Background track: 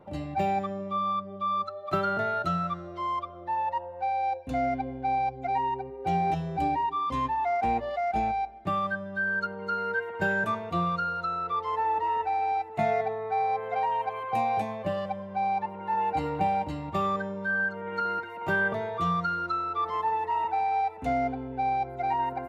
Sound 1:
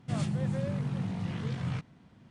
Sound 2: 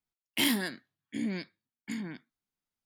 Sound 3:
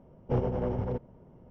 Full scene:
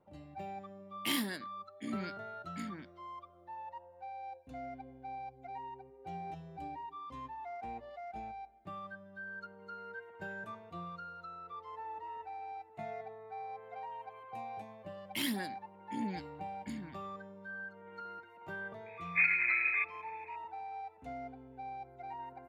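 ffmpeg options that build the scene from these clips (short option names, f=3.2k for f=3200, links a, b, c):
-filter_complex "[2:a]asplit=2[a][b];[0:a]volume=-17dB[c];[b]aphaser=in_gain=1:out_gain=1:delay=1.2:decay=0.38:speed=1.6:type=triangular[d];[3:a]lowpass=f=2.2k:t=q:w=0.5098,lowpass=f=2.2k:t=q:w=0.6013,lowpass=f=2.2k:t=q:w=0.9,lowpass=f=2.2k:t=q:w=2.563,afreqshift=-2600[e];[a]atrim=end=2.85,asetpts=PTS-STARTPTS,volume=-6.5dB,afade=t=in:d=0.004:c=hsin,afade=t=out:st=2.846:d=0.004:c=hsin,adelay=680[f];[d]atrim=end=2.85,asetpts=PTS-STARTPTS,volume=-9dB,afade=t=in:d=0.004:c=hsin,afade=t=out:st=2.846:d=0.004:c=hsin,adelay=14780[g];[e]atrim=end=1.5,asetpts=PTS-STARTPTS,volume=-1dB,afade=t=in:d=0.004:c=hsin,afade=t=out:st=1.496:d=0.004:c=hsin,adelay=18860[h];[c][f][g][h]amix=inputs=4:normalize=0"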